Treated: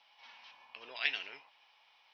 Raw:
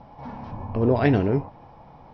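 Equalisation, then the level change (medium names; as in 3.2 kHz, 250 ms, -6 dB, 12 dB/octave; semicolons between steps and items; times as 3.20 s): resonant high-pass 2.9 kHz, resonance Q 2.5; -1.5 dB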